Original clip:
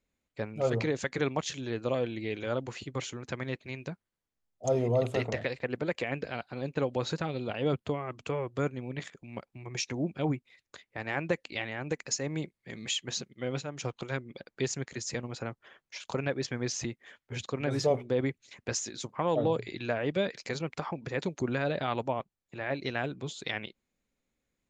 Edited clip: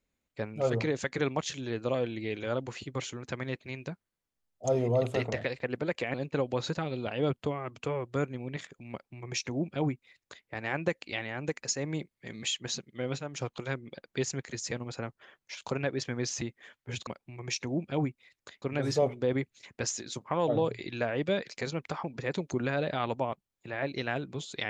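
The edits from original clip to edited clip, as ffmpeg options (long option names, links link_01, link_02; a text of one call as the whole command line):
ffmpeg -i in.wav -filter_complex "[0:a]asplit=4[link_01][link_02][link_03][link_04];[link_01]atrim=end=6.142[link_05];[link_02]atrim=start=6.568:end=17.502[link_06];[link_03]atrim=start=9.338:end=10.892[link_07];[link_04]atrim=start=17.498[link_08];[link_05][link_06]acrossfade=duration=0.004:curve1=hsin:curve2=hsin[link_09];[link_09][link_07]acrossfade=duration=0.004:curve1=hsin:curve2=hsin[link_10];[link_10][link_08]acrossfade=duration=0.004:curve1=hsin:curve2=hsin" out.wav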